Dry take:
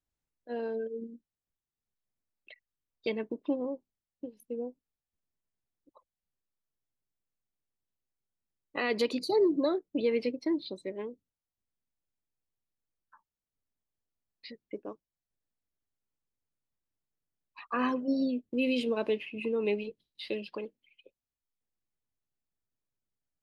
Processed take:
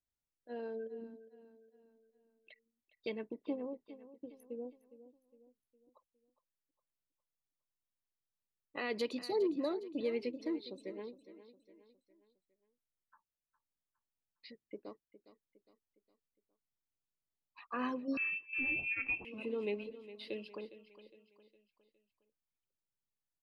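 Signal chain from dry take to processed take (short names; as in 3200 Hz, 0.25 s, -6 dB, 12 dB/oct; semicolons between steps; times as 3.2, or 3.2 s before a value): on a send: feedback echo 0.41 s, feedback 45%, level -15 dB; 18.17–19.25 on the sum: inverted band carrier 2900 Hz; gain -7.5 dB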